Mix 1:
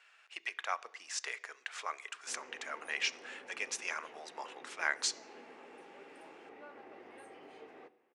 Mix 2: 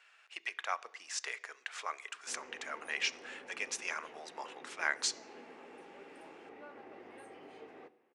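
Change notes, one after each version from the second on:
background: add bass shelf 230 Hz +5.5 dB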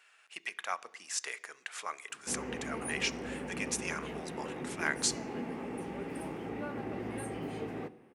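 background +9.5 dB; master: remove three-band isolator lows -21 dB, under 330 Hz, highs -16 dB, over 7.1 kHz

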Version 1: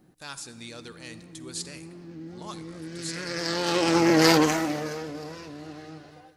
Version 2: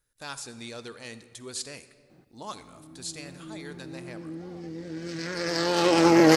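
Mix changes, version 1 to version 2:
background: entry +2.10 s; master: add peaking EQ 570 Hz +4 dB 2.2 oct

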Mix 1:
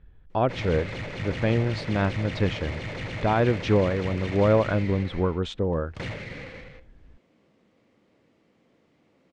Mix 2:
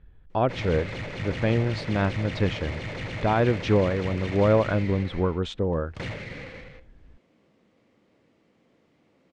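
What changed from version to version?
no change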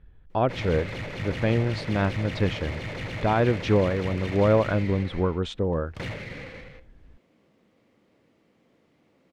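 master: remove low-pass 8.9 kHz 24 dB/octave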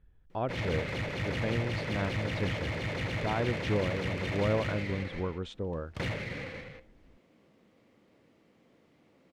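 speech -9.5 dB

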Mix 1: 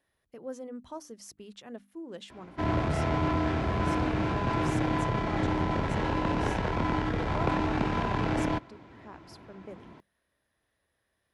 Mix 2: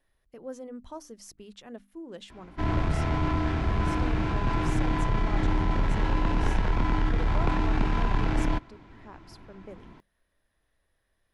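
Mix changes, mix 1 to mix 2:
background: add peaking EQ 550 Hz -5.5 dB 0.77 oct; master: remove high-pass 85 Hz 12 dB/octave

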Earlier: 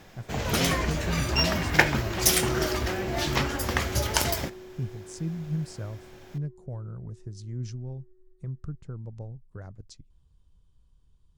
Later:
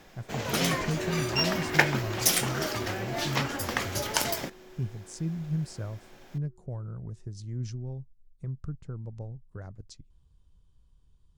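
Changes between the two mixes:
first sound: add high-pass 160 Hz 12 dB/octave; second sound: entry -1.20 s; reverb: off

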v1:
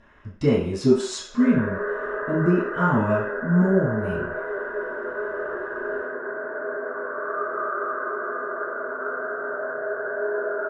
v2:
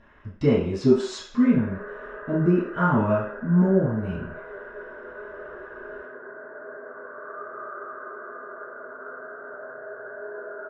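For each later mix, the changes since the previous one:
background: send -9.0 dB; master: add distance through air 95 m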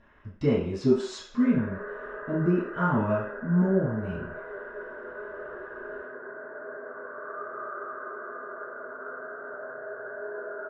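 speech -4.0 dB

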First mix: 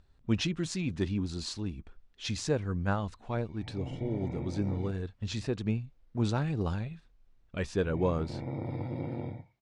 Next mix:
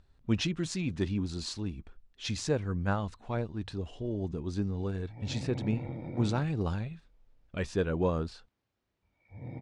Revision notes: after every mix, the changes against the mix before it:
background: entry +1.50 s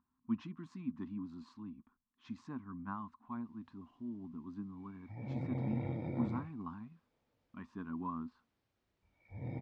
speech: add two resonant band-passes 510 Hz, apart 2.1 oct

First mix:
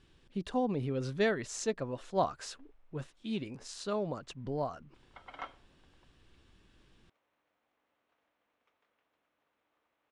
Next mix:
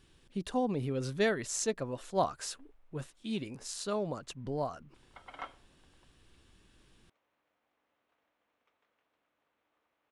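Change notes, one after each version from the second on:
speech: remove distance through air 70 m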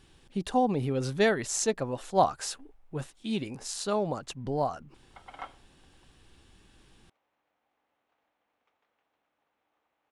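speech +4.5 dB; master: add peaking EQ 800 Hz +7 dB 0.25 oct

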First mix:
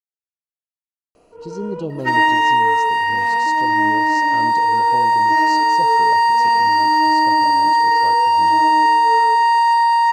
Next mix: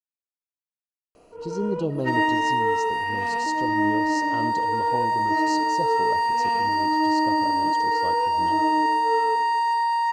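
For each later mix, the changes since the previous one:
second sound -8.5 dB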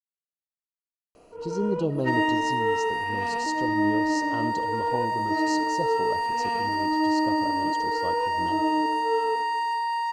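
second sound: send -10.5 dB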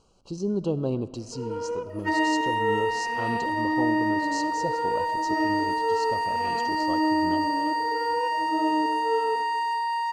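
speech: entry -1.15 s

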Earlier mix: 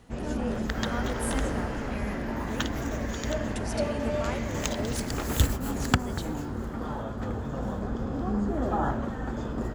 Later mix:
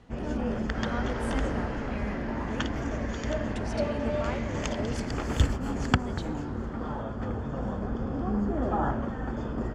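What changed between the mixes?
first sound: add Butterworth band-stop 3.9 kHz, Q 7.1; master: add distance through air 96 m

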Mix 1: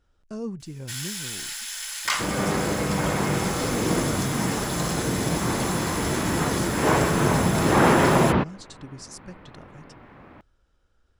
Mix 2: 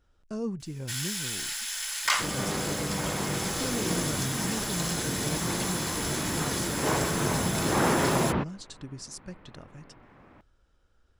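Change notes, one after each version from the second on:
second sound -7.0 dB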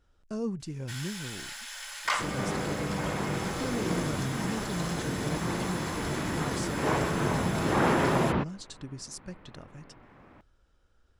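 first sound: add tilt EQ -3.5 dB/octave

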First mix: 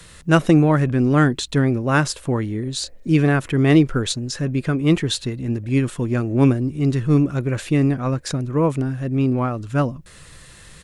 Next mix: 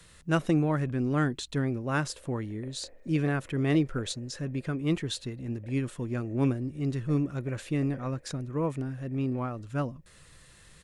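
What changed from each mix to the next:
speech -11.0 dB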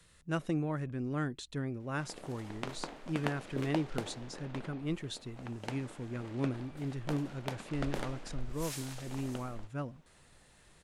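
speech -8.0 dB; background: remove cascade formant filter e

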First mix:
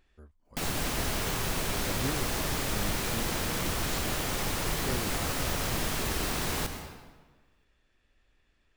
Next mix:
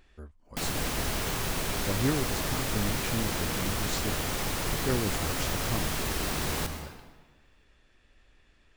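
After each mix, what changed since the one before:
speech +7.5 dB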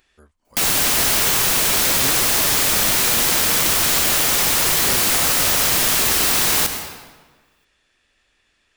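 background +10.5 dB; master: add tilt EQ +2.5 dB/octave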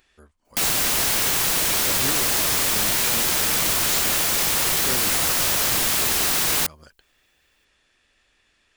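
reverb: off

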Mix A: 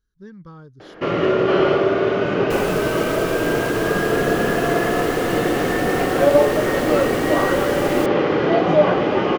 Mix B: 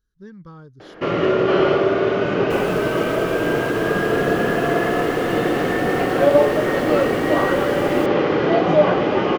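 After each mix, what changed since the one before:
second sound -6.5 dB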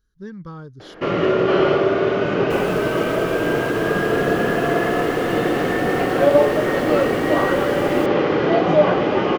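speech +5.5 dB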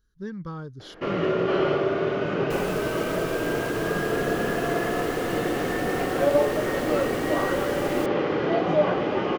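first sound -6.5 dB

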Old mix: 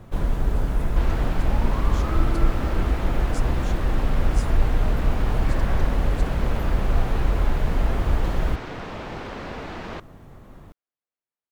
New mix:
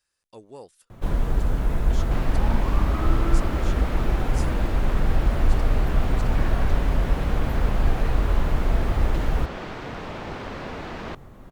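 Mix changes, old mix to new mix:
first sound: entry +0.90 s; second sound: entry +1.15 s

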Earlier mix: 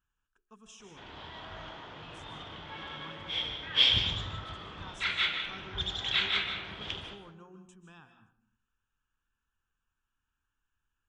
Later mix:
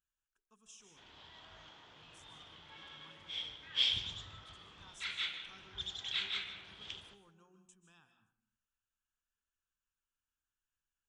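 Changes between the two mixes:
background: send -7.0 dB; master: add pre-emphasis filter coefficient 0.8

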